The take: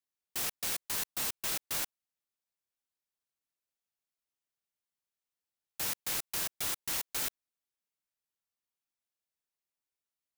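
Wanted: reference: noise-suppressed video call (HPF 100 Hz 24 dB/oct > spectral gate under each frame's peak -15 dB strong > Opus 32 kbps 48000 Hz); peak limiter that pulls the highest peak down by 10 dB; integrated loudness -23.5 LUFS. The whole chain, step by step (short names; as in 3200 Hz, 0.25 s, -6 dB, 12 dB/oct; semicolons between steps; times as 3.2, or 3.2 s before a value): limiter -30.5 dBFS; HPF 100 Hz 24 dB/oct; spectral gate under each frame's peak -15 dB strong; gain +17.5 dB; Opus 32 kbps 48000 Hz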